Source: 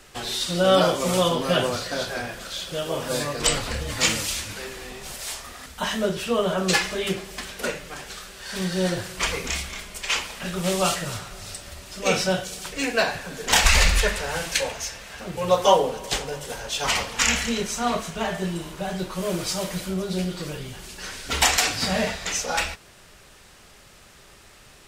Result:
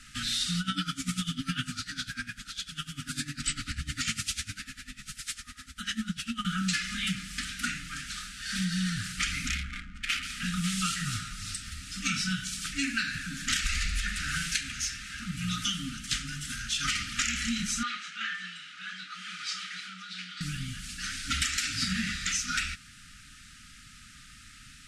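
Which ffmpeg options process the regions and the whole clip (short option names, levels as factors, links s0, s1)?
-filter_complex "[0:a]asettb=1/sr,asplit=3[s0][s1][s2];[s0]atrim=end=0.604[s3];[s1]atrim=start=0.6:end=6.45,asetpts=PTS-STARTPTS,afade=t=in:d=0.004:c=qsin,afade=t=out:st=5.846:d=0.004:c=qsin,bandreject=f=1200:w=28,aeval=exprs='val(0)*pow(10,-19*(0.5-0.5*cos(2*PI*10*n/s))/20)':c=same[s4];[s2]atrim=start=6.446[s5];[s3][s4]acrossfade=d=0.004:c1=hsin:c2=qsin[s6];[s6][s5]acrossfade=d=0.004:c1=qsin:c2=hsin,asettb=1/sr,asplit=3[s7][s8][s9];[s7]atrim=end=9.494[s10];[s8]atrim=start=9.49:end=10.23,asetpts=PTS-STARTPTS,afade=t=in:d=0.004:c=qsin,afade=t=out:st=0.736:d=0.004:c=qsin,highshelf=f=3700:g=-3,adynamicsmooth=sensitivity=6:basefreq=720[s11];[s9]atrim=start=10.226[s12];[s10][s11]acrossfade=d=0.004:c1=hsin:c2=qsin[s13];[s13][s12]acrossfade=d=0.004:c1=qsin:c2=hsin,asettb=1/sr,asplit=3[s14][s15][s16];[s14]atrim=end=17.834[s17];[s15]atrim=start=17.83:end=20.41,asetpts=PTS-STARTPTS,afade=t=in:d=0.004:c=qsin,afade=t=out:st=2.576:d=0.004:c=qsin,highpass=790,lowpass=3800,asplit=2[s18][s19];[s19]adelay=27,volume=0.237[s20];[s18][s20]amix=inputs=2:normalize=0,atrim=end_sample=113778[s21];[s16]atrim=start=20.406[s22];[s17][s21]acrossfade=d=0.004:c1=hsin:c2=qsin[s23];[s23][s22]acrossfade=d=0.004:c1=qsin:c2=hsin,lowpass=f=11000:w=0.5412,lowpass=f=11000:w=1.3066,afftfilt=real='re*(1-between(b*sr/4096,300,1200))':imag='im*(1-between(b*sr/4096,300,1200))':win_size=4096:overlap=0.75,acompressor=threshold=0.0501:ratio=10"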